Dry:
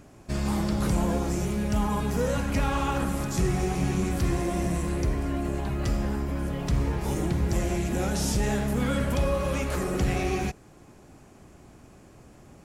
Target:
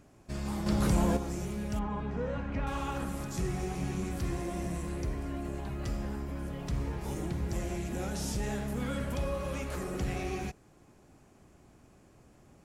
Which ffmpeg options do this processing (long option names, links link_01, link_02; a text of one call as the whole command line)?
ffmpeg -i in.wav -filter_complex "[0:a]asettb=1/sr,asplit=3[link_01][link_02][link_03];[link_01]atrim=end=0.664[link_04];[link_02]atrim=start=0.66:end=1.17,asetpts=PTS-STARTPTS,afade=type=in:duration=0.004:curve=qsin,afade=type=out:start_time=0.506:duration=0.004:curve=qsin,acontrast=73[link_05];[link_03]atrim=start=1.166[link_06];[link_04][link_05]acrossfade=duration=0.004:curve1=hsin:curve2=qsin[link_07];[link_07][link_06]acrossfade=duration=0.004:curve1=qsin:curve2=hsin,asettb=1/sr,asplit=3[link_08][link_09][link_10];[link_08]atrim=end=1.794[link_11];[link_09]atrim=start=1.79:end=2.67,asetpts=PTS-STARTPTS,afade=type=in:duration=0.004:curve=qsin,afade=type=out:start_time=0.876:duration=0.004:curve=qsin,lowpass=2400[link_12];[link_10]atrim=start=2.666[link_13];[link_11][link_12]acrossfade=duration=0.004:curve1=hsin:curve2=qsin[link_14];[link_14][link_13]acrossfade=duration=0.004:curve1=qsin:curve2=hsin,volume=-8dB" out.wav